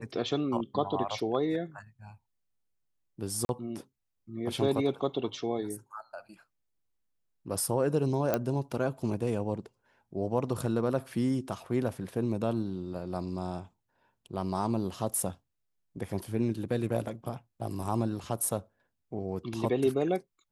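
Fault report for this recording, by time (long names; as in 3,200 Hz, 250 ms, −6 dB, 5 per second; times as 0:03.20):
0:03.45–0:03.49: drop-out 41 ms
0:08.34: click −13 dBFS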